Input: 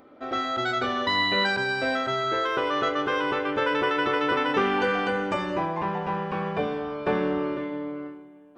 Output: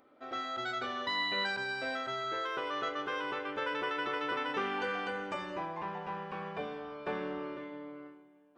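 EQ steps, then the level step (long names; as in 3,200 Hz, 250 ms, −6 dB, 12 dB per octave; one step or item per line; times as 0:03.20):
low-shelf EQ 490 Hz −6.5 dB
mains-hum notches 50/100 Hz
−8.5 dB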